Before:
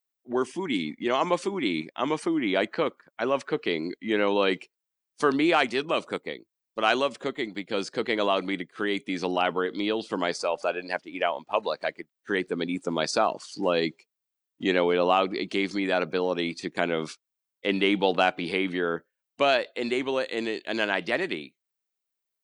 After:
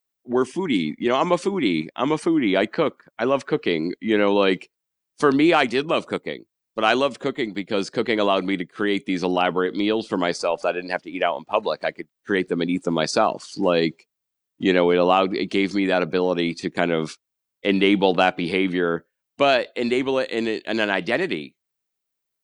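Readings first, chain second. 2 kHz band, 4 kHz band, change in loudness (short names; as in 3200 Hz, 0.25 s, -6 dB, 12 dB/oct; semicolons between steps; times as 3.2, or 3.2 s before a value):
+3.5 dB, +3.5 dB, +5.0 dB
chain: low shelf 290 Hz +6.5 dB; gain +3.5 dB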